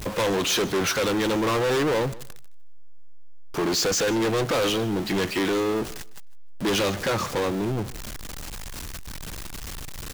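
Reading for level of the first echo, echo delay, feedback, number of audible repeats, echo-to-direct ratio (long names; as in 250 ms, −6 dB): −20.0 dB, 154 ms, 20%, 2, −20.0 dB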